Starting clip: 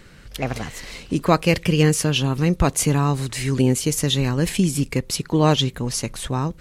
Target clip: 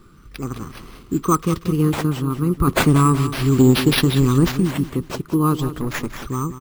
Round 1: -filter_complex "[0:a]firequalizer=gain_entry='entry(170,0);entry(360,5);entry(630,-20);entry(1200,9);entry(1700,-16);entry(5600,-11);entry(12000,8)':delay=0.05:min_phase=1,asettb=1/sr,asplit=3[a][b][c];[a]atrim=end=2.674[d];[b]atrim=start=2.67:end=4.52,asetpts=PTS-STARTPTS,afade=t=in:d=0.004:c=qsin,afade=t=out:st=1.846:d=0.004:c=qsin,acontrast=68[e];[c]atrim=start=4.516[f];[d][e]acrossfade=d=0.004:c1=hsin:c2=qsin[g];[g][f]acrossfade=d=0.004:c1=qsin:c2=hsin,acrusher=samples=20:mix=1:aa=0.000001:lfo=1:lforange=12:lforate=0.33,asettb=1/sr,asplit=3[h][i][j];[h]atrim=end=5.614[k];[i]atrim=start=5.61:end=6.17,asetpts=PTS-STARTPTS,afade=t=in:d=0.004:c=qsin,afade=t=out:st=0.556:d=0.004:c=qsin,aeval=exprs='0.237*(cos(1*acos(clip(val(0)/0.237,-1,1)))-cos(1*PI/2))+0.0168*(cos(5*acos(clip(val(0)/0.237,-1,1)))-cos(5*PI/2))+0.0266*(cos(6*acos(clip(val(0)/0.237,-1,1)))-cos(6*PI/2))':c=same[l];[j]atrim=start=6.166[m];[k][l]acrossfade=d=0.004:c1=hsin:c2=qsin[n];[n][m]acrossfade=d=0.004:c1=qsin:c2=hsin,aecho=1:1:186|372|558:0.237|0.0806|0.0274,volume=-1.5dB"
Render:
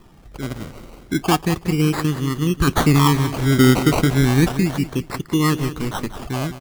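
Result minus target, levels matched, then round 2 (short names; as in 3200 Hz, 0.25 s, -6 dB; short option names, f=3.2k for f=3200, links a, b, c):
decimation with a swept rate: distortion +6 dB
-filter_complex "[0:a]firequalizer=gain_entry='entry(170,0);entry(360,5);entry(630,-20);entry(1200,9);entry(1700,-16);entry(5600,-11);entry(12000,8)':delay=0.05:min_phase=1,asettb=1/sr,asplit=3[a][b][c];[a]atrim=end=2.674[d];[b]atrim=start=2.67:end=4.52,asetpts=PTS-STARTPTS,afade=t=in:d=0.004:c=qsin,afade=t=out:st=1.846:d=0.004:c=qsin,acontrast=68[e];[c]atrim=start=4.516[f];[d][e]acrossfade=d=0.004:c1=hsin:c2=qsin[g];[g][f]acrossfade=d=0.004:c1=qsin:c2=hsin,acrusher=samples=5:mix=1:aa=0.000001:lfo=1:lforange=3:lforate=0.33,asettb=1/sr,asplit=3[h][i][j];[h]atrim=end=5.614[k];[i]atrim=start=5.61:end=6.17,asetpts=PTS-STARTPTS,afade=t=in:d=0.004:c=qsin,afade=t=out:st=0.556:d=0.004:c=qsin,aeval=exprs='0.237*(cos(1*acos(clip(val(0)/0.237,-1,1)))-cos(1*PI/2))+0.0168*(cos(5*acos(clip(val(0)/0.237,-1,1)))-cos(5*PI/2))+0.0266*(cos(6*acos(clip(val(0)/0.237,-1,1)))-cos(6*PI/2))':c=same[l];[j]atrim=start=6.166[m];[k][l]acrossfade=d=0.004:c1=hsin:c2=qsin[n];[n][m]acrossfade=d=0.004:c1=qsin:c2=hsin,aecho=1:1:186|372|558:0.237|0.0806|0.0274,volume=-1.5dB"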